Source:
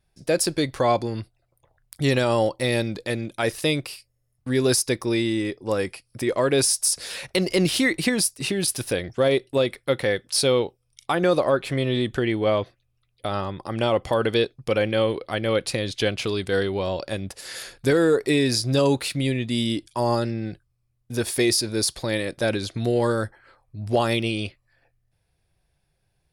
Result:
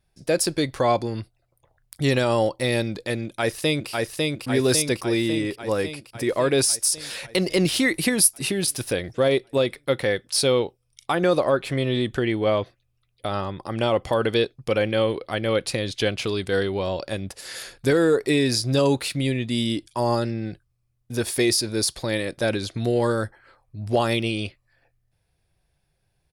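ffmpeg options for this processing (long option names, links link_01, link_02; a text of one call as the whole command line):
ffmpeg -i in.wav -filter_complex "[0:a]asplit=2[link_01][link_02];[link_02]afade=type=in:start_time=3.25:duration=0.01,afade=type=out:start_time=3.9:duration=0.01,aecho=0:1:550|1100|1650|2200|2750|3300|3850|4400|4950|5500|6050:0.794328|0.516313|0.335604|0.218142|0.141793|0.0921652|0.0599074|0.0389398|0.0253109|0.0164521|0.0106938[link_03];[link_01][link_03]amix=inputs=2:normalize=0,asettb=1/sr,asplit=3[link_04][link_05][link_06];[link_04]atrim=end=7.884[link_07];[link_05]atrim=start=7.88:end=8.6,asetpts=PTS-STARTPTS,afade=type=in:duration=0.004:curve=qsin,afade=type=out:start_time=0.716:duration=0.004:curve=qsin,equalizer=frequency=11000:width=2.9:gain=11[link_08];[link_06]atrim=start=8.596[link_09];[link_07][link_08]acrossfade=duration=0.004:curve1=hsin:curve2=qsin[link_10];[link_10][link_09]acrossfade=duration=0.004:curve1=qsin:curve2=hsin" out.wav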